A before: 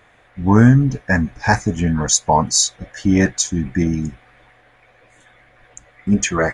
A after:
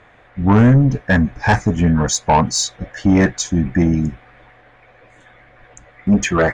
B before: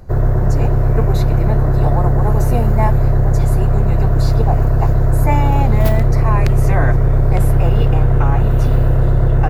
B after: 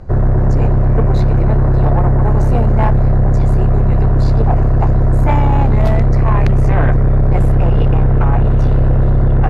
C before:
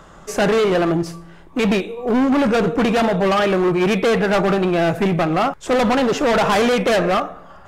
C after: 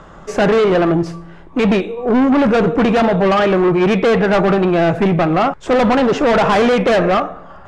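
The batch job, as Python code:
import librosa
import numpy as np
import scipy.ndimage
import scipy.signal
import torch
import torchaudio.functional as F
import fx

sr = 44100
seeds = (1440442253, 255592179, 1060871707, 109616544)

y = scipy.signal.sosfilt(scipy.signal.butter(2, 8400.0, 'lowpass', fs=sr, output='sos'), x)
y = fx.high_shelf(y, sr, hz=3700.0, db=-10.0)
y = 10.0 ** (-11.0 / 20.0) * np.tanh(y / 10.0 ** (-11.0 / 20.0))
y = F.gain(torch.from_numpy(y), 5.0).numpy()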